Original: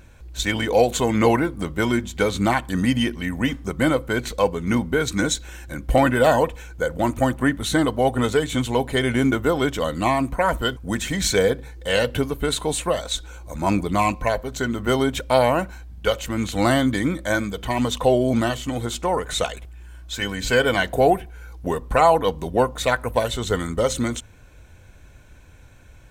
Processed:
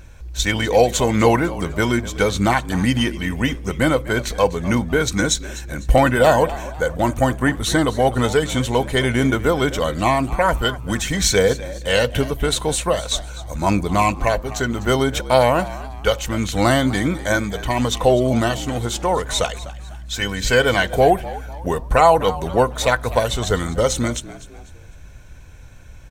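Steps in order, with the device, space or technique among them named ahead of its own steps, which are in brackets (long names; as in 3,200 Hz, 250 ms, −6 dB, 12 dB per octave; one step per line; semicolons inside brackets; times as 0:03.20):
low shelf boost with a cut just above (low-shelf EQ 64 Hz +6.5 dB; parametric band 270 Hz −3 dB 0.81 octaves)
parametric band 5,700 Hz +4.5 dB 0.38 octaves
echo with shifted repeats 250 ms, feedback 39%, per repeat +74 Hz, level −17 dB
level +3 dB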